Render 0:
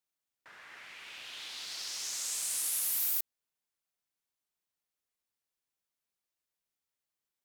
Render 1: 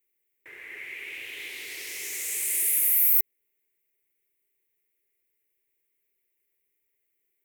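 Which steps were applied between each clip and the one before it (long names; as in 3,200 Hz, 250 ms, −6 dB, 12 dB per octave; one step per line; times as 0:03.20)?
drawn EQ curve 120 Hz 0 dB, 200 Hz −9 dB, 400 Hz +11 dB, 650 Hz −9 dB, 1,400 Hz −13 dB, 2,100 Hz +9 dB, 3,300 Hz −7 dB, 4,700 Hz −14 dB, 15,000 Hz +9 dB
in parallel at +2 dB: brickwall limiter −21.5 dBFS, peak gain reduction 11 dB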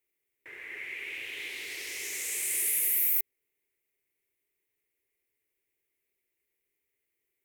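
high-shelf EQ 12,000 Hz −9 dB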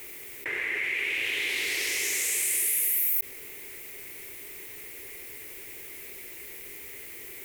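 envelope flattener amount 70%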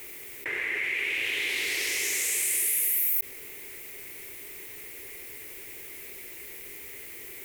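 no processing that can be heard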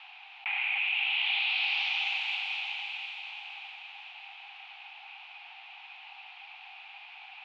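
feedback delay with all-pass diffusion 610 ms, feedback 43%, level −6.5 dB
single-sideband voice off tune +390 Hz 380–3,500 Hz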